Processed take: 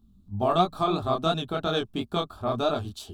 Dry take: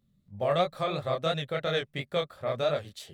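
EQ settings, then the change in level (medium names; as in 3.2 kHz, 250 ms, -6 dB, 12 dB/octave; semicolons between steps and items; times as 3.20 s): tone controls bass +11 dB, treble -5 dB; static phaser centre 530 Hz, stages 6; +8.5 dB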